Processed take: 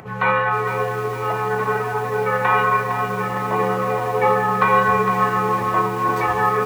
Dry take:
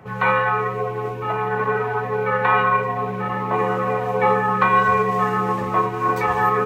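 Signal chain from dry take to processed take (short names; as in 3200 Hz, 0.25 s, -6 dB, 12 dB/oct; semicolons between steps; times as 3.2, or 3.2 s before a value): upward compressor, threshold -37 dBFS; lo-fi delay 0.457 s, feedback 55%, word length 6-bit, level -8 dB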